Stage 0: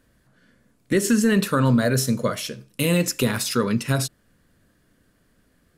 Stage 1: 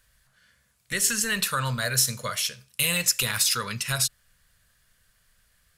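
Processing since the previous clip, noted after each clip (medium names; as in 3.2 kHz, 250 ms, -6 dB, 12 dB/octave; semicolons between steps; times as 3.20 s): amplifier tone stack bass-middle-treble 10-0-10; trim +5.5 dB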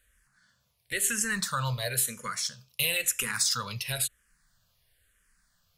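barber-pole phaser -0.99 Hz; trim -1.5 dB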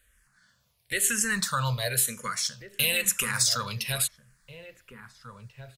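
echo from a far wall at 290 m, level -10 dB; trim +2.5 dB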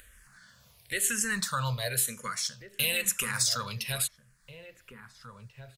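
upward compressor, threshold -42 dBFS; trim -3 dB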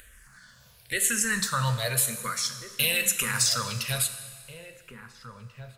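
plate-style reverb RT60 1.7 s, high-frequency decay 1×, DRR 9 dB; trim +3 dB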